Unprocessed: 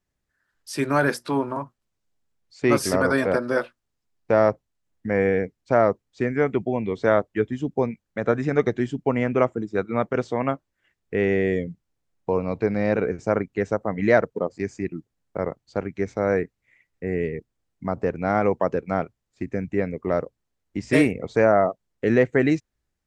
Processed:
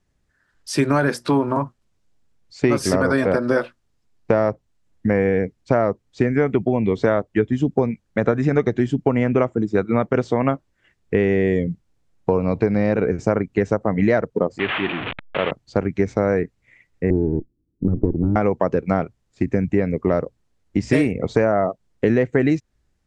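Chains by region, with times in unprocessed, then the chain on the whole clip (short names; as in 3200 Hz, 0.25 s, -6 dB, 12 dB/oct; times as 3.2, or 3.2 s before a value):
14.59–15.51 delta modulation 16 kbps, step -26.5 dBFS + tilt +4 dB/oct
17.1–18.36 minimum comb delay 0.72 ms + synth low-pass 330 Hz, resonance Q 3.8
whole clip: LPF 9800 Hz; low shelf 350 Hz +5.5 dB; compressor, threshold -21 dBFS; gain +7 dB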